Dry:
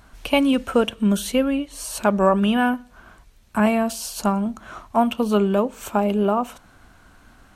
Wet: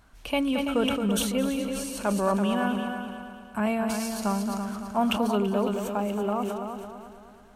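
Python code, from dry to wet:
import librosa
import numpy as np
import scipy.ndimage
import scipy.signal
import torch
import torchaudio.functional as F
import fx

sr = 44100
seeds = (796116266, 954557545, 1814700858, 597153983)

p1 = fx.rider(x, sr, range_db=10, speed_s=2.0)
p2 = p1 + fx.echo_heads(p1, sr, ms=111, heads='second and third', feedback_pct=46, wet_db=-8, dry=0)
p3 = fx.sustainer(p2, sr, db_per_s=30.0)
y = F.gain(torch.from_numpy(p3), -8.5).numpy()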